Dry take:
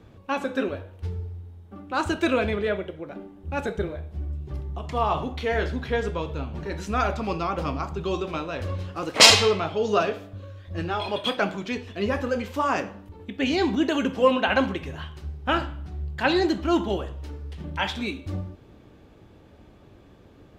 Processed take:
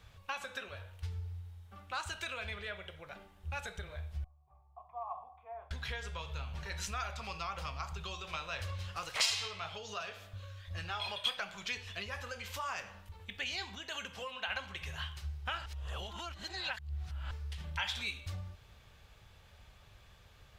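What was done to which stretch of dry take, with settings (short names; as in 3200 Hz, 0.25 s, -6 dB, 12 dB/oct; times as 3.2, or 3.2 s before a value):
4.24–5.71 vocal tract filter a
15.66–17.31 reverse
whole clip: compressor 16:1, threshold -29 dBFS; passive tone stack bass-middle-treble 10-0-10; gain +4 dB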